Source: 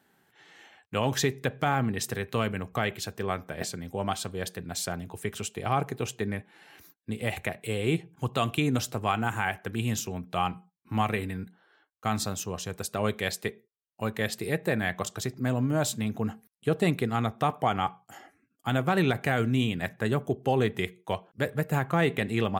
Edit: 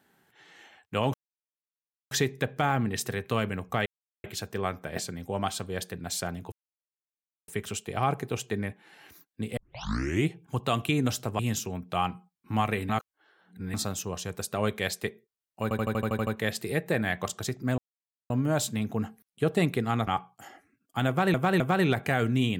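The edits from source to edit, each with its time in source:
0:01.14: splice in silence 0.97 s
0:02.89: splice in silence 0.38 s
0:05.17: splice in silence 0.96 s
0:07.26: tape start 0.71 s
0:09.08–0:09.80: remove
0:11.30–0:12.15: reverse
0:14.04: stutter 0.08 s, 9 plays
0:15.55: splice in silence 0.52 s
0:17.32–0:17.77: remove
0:18.78–0:19.04: repeat, 3 plays

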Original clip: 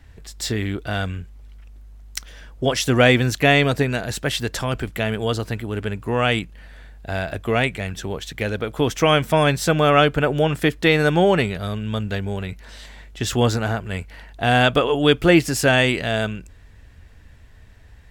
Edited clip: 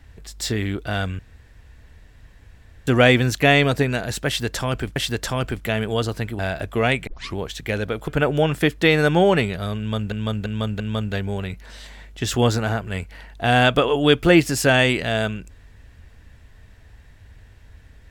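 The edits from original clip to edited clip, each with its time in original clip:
0:01.19–0:02.87: fill with room tone
0:04.27–0:04.96: repeat, 2 plays
0:05.70–0:07.11: remove
0:07.79: tape start 0.29 s
0:08.80–0:10.09: remove
0:11.79–0:12.13: repeat, 4 plays

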